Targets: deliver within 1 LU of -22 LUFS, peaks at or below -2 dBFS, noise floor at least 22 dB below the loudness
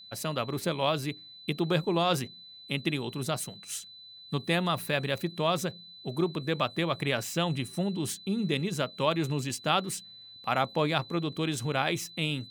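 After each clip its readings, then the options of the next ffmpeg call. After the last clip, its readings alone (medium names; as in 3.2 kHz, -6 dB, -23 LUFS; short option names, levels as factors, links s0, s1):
steady tone 4 kHz; tone level -47 dBFS; loudness -30.5 LUFS; peak level -11.0 dBFS; loudness target -22.0 LUFS
-> -af "bandreject=f=4000:w=30"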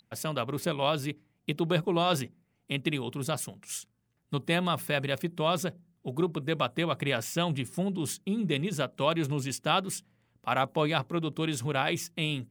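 steady tone not found; loudness -30.5 LUFS; peak level -11.0 dBFS; loudness target -22.0 LUFS
-> -af "volume=2.66"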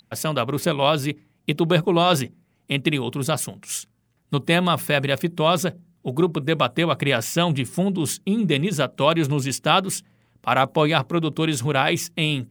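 loudness -22.0 LUFS; peak level -2.5 dBFS; noise floor -66 dBFS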